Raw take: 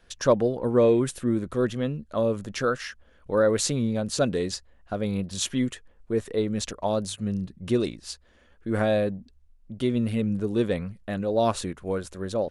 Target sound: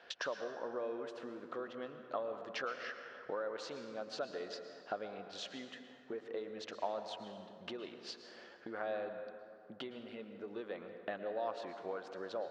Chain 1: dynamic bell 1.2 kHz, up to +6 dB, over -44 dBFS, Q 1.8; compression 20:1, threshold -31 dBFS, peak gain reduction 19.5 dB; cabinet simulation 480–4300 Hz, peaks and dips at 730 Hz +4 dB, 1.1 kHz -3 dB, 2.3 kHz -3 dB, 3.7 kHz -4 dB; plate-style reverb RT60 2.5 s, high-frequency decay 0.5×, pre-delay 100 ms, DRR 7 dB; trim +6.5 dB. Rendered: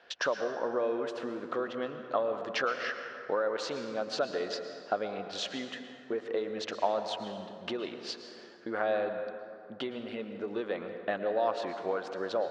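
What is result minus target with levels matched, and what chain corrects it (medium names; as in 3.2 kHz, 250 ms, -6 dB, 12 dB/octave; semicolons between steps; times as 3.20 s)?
compression: peak gain reduction -9.5 dB
dynamic bell 1.2 kHz, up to +6 dB, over -44 dBFS, Q 1.8; compression 20:1, threshold -41 dBFS, peak gain reduction 29 dB; cabinet simulation 480–4300 Hz, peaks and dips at 730 Hz +4 dB, 1.1 kHz -3 dB, 2.3 kHz -3 dB, 3.7 kHz -4 dB; plate-style reverb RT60 2.5 s, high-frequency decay 0.5×, pre-delay 100 ms, DRR 7 dB; trim +6.5 dB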